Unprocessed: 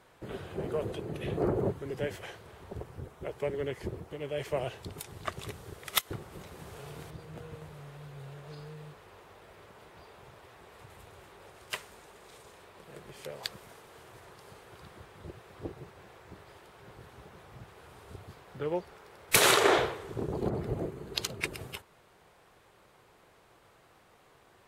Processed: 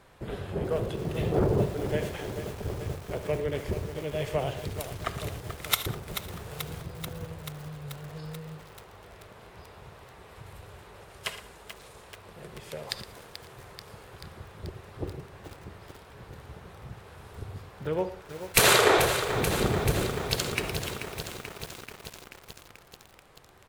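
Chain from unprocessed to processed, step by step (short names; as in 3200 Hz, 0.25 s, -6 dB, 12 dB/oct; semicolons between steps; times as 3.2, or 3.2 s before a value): low shelf 96 Hz +10.5 dB; echo 0.12 s -14.5 dB; reverb, pre-delay 3 ms, DRR 11.5 dB; speed mistake 24 fps film run at 25 fps; lo-fi delay 0.435 s, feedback 80%, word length 7-bit, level -9 dB; gain +2.5 dB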